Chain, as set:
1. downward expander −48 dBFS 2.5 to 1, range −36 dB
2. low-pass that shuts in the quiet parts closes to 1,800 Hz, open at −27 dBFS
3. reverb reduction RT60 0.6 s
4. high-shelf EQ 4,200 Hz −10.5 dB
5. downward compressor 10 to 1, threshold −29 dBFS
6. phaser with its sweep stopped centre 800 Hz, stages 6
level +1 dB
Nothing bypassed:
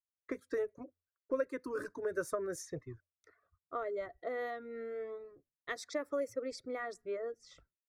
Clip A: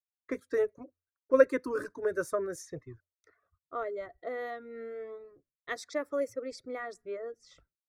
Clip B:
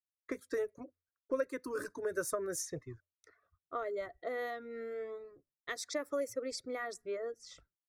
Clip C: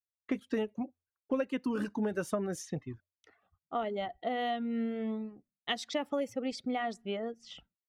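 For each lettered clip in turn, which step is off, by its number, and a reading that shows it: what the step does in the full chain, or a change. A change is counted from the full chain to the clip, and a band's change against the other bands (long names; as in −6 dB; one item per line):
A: 5, average gain reduction 2.5 dB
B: 4, 8 kHz band +7.5 dB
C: 6, 4 kHz band +7.5 dB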